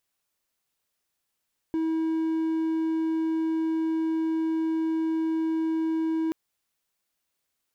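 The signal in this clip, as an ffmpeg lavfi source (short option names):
-f lavfi -i "aevalsrc='0.0841*(1-4*abs(mod(322*t+0.25,1)-0.5))':d=4.58:s=44100"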